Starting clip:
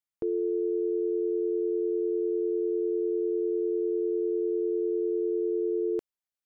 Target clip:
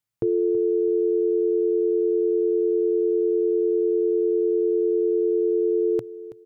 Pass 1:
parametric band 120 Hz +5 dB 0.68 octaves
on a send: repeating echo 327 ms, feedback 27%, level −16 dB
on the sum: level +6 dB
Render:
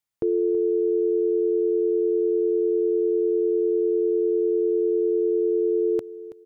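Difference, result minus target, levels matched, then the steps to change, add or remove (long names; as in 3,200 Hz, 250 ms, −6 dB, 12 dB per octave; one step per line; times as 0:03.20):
125 Hz band −8.0 dB
change: parametric band 120 Hz +16.5 dB 0.68 octaves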